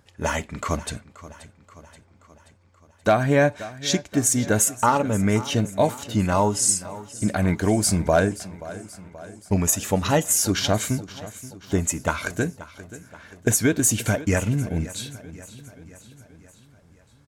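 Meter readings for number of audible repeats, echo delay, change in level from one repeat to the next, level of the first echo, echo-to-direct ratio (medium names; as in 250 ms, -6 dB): 4, 529 ms, -5.0 dB, -17.0 dB, -15.5 dB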